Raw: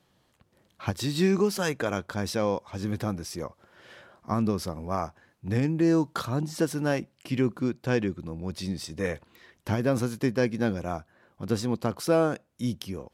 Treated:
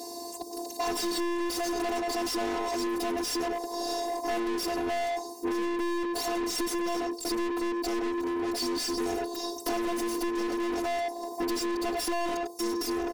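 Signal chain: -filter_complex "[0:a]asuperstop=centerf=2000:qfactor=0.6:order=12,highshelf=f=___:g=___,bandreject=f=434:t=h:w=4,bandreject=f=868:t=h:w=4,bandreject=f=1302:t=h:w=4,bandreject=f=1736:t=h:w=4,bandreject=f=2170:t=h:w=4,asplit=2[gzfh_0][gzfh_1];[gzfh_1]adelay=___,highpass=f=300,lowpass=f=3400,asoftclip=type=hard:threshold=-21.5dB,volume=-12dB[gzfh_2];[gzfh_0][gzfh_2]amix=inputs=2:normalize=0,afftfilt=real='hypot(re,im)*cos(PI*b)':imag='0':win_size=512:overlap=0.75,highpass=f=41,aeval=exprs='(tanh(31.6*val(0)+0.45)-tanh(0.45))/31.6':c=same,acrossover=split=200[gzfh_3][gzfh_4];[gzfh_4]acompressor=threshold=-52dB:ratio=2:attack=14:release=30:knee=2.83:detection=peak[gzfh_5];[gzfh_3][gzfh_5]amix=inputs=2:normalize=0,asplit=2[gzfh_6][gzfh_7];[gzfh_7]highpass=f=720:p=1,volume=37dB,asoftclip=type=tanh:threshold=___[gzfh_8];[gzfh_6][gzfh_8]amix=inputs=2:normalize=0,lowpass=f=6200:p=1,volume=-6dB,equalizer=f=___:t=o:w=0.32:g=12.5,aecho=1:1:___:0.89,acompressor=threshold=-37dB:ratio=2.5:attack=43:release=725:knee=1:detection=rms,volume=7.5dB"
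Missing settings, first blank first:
9300, 9, 100, -29dB, 390, 4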